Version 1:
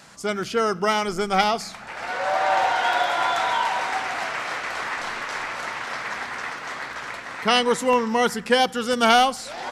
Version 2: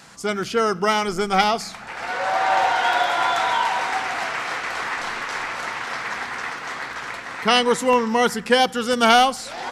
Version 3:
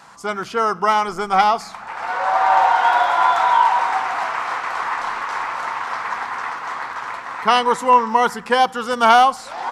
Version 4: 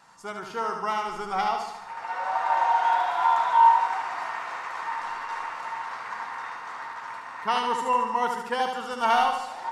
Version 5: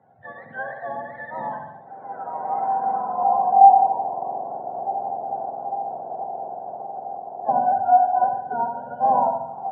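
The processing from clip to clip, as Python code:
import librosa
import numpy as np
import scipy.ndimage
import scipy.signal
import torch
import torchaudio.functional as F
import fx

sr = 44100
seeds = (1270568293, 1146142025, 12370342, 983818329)

y1 = fx.notch(x, sr, hz=600.0, q=13.0)
y1 = F.gain(torch.from_numpy(y1), 2.0).numpy()
y2 = fx.peak_eq(y1, sr, hz=1000.0, db=13.5, octaves=1.1)
y2 = F.gain(torch.from_numpy(y2), -5.0).numpy()
y3 = fx.comb_fb(y2, sr, f0_hz=920.0, decay_s=0.26, harmonics='all', damping=0.0, mix_pct=80)
y3 = fx.echo_feedback(y3, sr, ms=74, feedback_pct=56, wet_db=-5.5)
y3 = F.gain(torch.from_numpy(y3), 1.5).numpy()
y4 = fx.octave_mirror(y3, sr, pivot_hz=850.0)
y4 = fx.filter_sweep_lowpass(y4, sr, from_hz=1900.0, to_hz=850.0, start_s=2.65, end_s=3.7, q=3.2)
y4 = fx.cabinet(y4, sr, low_hz=120.0, low_slope=24, high_hz=3400.0, hz=(120.0, 230.0, 340.0, 720.0, 1500.0, 2600.0), db=(-5, 4, -6, 10, 7, -8))
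y4 = F.gain(torch.from_numpy(y4), -7.5).numpy()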